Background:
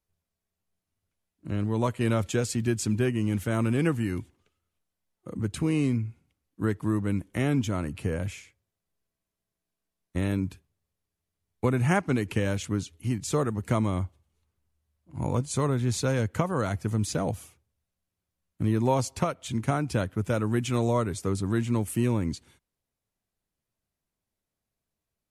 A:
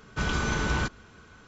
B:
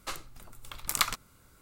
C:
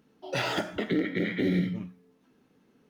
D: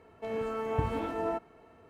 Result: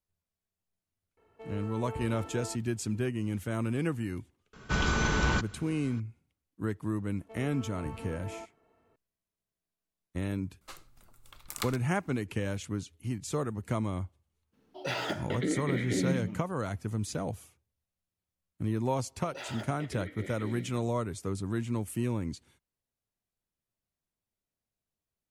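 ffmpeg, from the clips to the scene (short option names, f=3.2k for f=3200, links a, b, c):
-filter_complex "[4:a]asplit=2[a][b];[3:a]asplit=2[c][d];[0:a]volume=-6dB[e];[a]aecho=1:1:2.3:0.31[f];[d]highpass=300[g];[f]atrim=end=1.89,asetpts=PTS-STARTPTS,volume=-10.5dB,afade=t=in:d=0.004:c=hsin,afade=t=out:st=1.886:d=0.004:c=hsin,adelay=1170[h];[1:a]atrim=end=1.47,asetpts=PTS-STARTPTS,afade=t=in:d=0.004:c=hsin,afade=t=out:st=1.466:d=0.004:c=hsin,adelay=199773S[i];[b]atrim=end=1.89,asetpts=PTS-STARTPTS,volume=-11.5dB,afade=t=in:d=0.004:c=hsin,afade=t=out:st=1.886:d=0.004:c=hsin,adelay=7070[j];[2:a]atrim=end=1.61,asetpts=PTS-STARTPTS,volume=-10dB,afade=t=in:d=0.004:c=hsin,afade=t=out:st=1.606:d=0.004:c=hsin,adelay=10610[k];[c]atrim=end=2.89,asetpts=PTS-STARTPTS,volume=-4dB,afade=t=in:d=0.02,afade=t=out:st=2.87:d=0.02,adelay=14520[l];[g]atrim=end=2.89,asetpts=PTS-STARTPTS,volume=-12.5dB,afade=t=in:d=0.004:c=hsin,afade=t=out:st=2.886:d=0.004:c=hsin,adelay=19020[m];[e][h][i][j][k][l][m]amix=inputs=7:normalize=0"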